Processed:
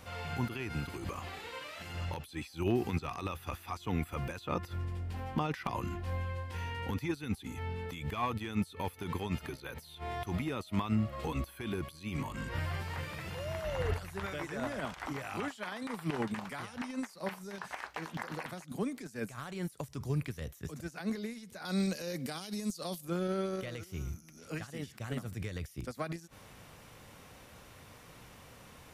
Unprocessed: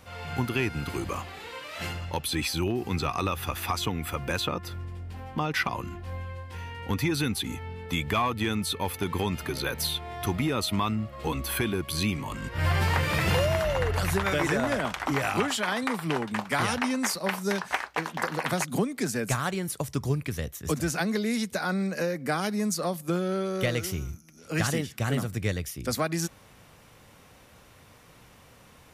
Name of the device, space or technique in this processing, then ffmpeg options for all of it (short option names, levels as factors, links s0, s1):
de-esser from a sidechain: -filter_complex "[0:a]asplit=2[s0][s1];[s1]highpass=f=4200:w=0.5412,highpass=f=4200:w=1.3066,apad=whole_len=1275945[s2];[s0][s2]sidechaincompress=threshold=0.00224:ratio=20:attack=2.5:release=49,asettb=1/sr,asplit=3[s3][s4][s5];[s3]atrim=end=21.654[s6];[s4]atrim=start=21.65:end=23.05,asetpts=PTS-STARTPTS,afade=t=in:d=0.004:c=qsin,afade=t=out:st=1.396:d=0.004:c=qsin,highshelf=f=2500:t=q:w=1.5:g=8.5[s7];[s5]atrim=start=23.046[s8];[s6][s7]acrossfade=d=0.004:c1=hsin:c2=qsin[s9];[s9][s8]acrossfade=d=0.004:c1=qsin:c2=hsin"